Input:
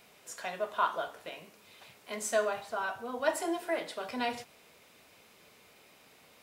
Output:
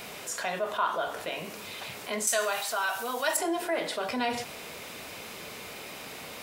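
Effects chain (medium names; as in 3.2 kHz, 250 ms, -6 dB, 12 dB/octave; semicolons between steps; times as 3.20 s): 2.27–3.37 s: tilt EQ +4 dB/octave; level flattener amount 50%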